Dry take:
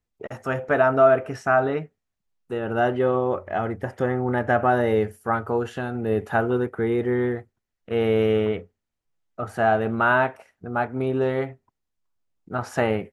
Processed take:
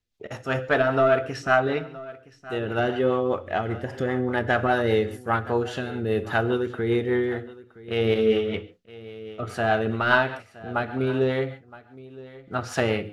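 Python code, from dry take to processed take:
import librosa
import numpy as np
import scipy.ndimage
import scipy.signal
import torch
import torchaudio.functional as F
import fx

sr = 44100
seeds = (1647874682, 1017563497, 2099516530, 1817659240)

p1 = fx.tracing_dist(x, sr, depth_ms=0.023)
p2 = fx.peak_eq(p1, sr, hz=4000.0, db=10.5, octaves=1.6)
p3 = fx.rev_gated(p2, sr, seeds[0], gate_ms=160, shape='flat', drr_db=11.0)
p4 = fx.rotary(p3, sr, hz=5.0)
p5 = p4 + fx.echo_single(p4, sr, ms=968, db=-19.0, dry=0)
y = fx.ensemble(p5, sr, at=(8.14, 8.54))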